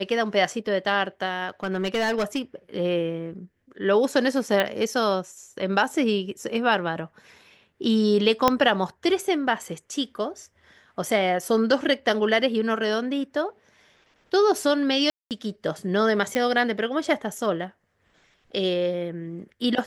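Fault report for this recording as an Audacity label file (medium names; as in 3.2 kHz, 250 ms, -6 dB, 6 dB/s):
1.630000	2.400000	clipped -20 dBFS
4.600000	4.600000	pop -9 dBFS
8.480000	8.480000	pop -4 dBFS
15.100000	15.310000	dropout 208 ms
16.350000	16.350000	pop -12 dBFS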